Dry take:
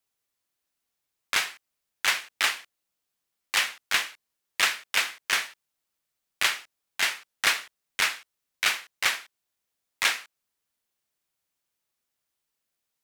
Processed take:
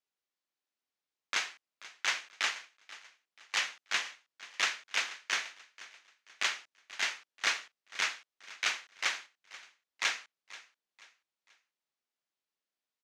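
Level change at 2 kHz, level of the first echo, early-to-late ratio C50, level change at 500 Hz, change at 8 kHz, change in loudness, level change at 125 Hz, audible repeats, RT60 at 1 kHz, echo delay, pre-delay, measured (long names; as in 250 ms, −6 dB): −7.0 dB, −18.0 dB, no reverb audible, −7.0 dB, −7.5 dB, −7.5 dB, can't be measured, 2, no reverb audible, 484 ms, no reverb audible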